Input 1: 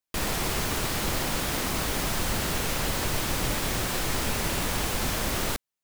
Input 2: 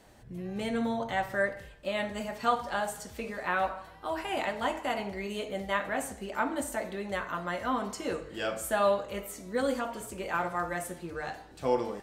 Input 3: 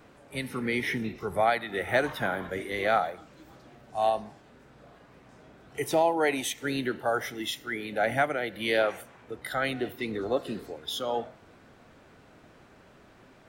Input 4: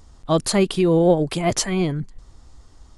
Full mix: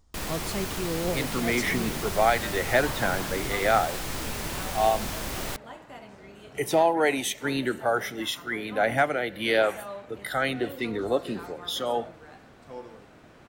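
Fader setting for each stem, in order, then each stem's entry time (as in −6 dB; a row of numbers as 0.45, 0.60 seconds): −5.0, −13.5, +2.5, −14.5 decibels; 0.00, 1.05, 0.80, 0.00 seconds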